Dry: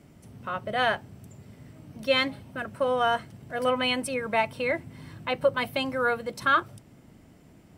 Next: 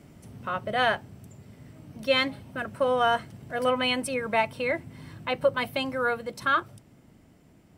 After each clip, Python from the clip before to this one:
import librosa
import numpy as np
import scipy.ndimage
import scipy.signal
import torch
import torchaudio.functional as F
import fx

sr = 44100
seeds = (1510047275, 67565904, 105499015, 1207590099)

y = fx.rider(x, sr, range_db=10, speed_s=2.0)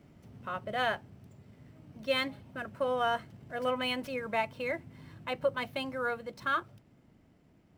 y = scipy.ndimage.median_filter(x, 5, mode='constant')
y = F.gain(torch.from_numpy(y), -6.5).numpy()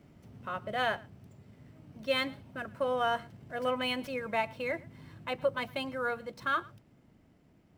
y = x + 10.0 ** (-23.0 / 20.0) * np.pad(x, (int(111 * sr / 1000.0), 0))[:len(x)]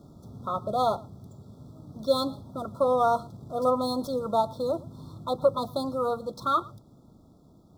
y = fx.brickwall_bandstop(x, sr, low_hz=1400.0, high_hz=3300.0)
y = F.gain(torch.from_numpy(y), 7.5).numpy()